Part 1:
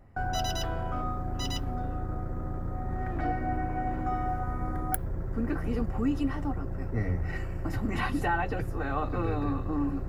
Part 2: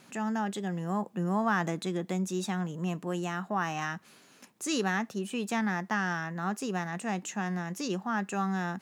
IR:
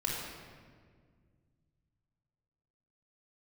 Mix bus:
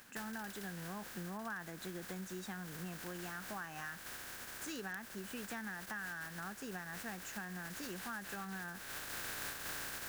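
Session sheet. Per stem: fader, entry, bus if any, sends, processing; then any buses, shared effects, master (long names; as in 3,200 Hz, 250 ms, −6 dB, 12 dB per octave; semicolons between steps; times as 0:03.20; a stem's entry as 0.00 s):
−1.5 dB, 0.00 s, no send, compressing power law on the bin magnitudes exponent 0.11; amplitude modulation by smooth noise, depth 50%; automatic ducking −14 dB, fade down 0.25 s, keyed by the second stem
−10.0 dB, 0.00 s, no send, no processing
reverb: not used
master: parametric band 1,600 Hz +11 dB 0.39 octaves; downward compressor 6 to 1, threshold −41 dBFS, peak gain reduction 13 dB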